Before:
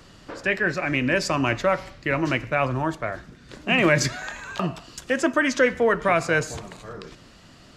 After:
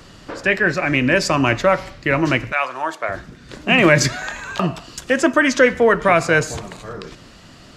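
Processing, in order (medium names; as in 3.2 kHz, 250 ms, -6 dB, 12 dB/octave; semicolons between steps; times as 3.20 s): 2.51–3.08 s: high-pass 1.1 kHz -> 460 Hz 12 dB/octave; trim +6 dB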